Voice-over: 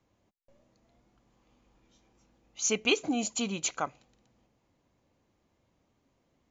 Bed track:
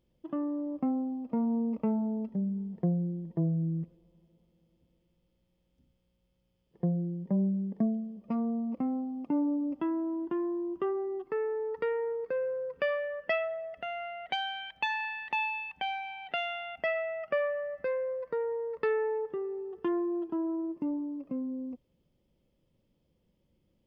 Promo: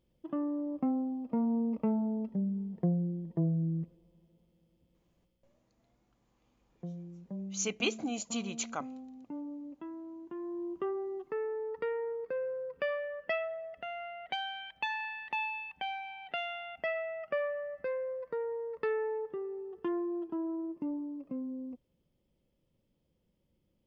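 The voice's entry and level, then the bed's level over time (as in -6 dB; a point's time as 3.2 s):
4.95 s, -5.5 dB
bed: 5.26 s -1 dB
5.64 s -12.5 dB
10.23 s -12.5 dB
10.64 s -3.5 dB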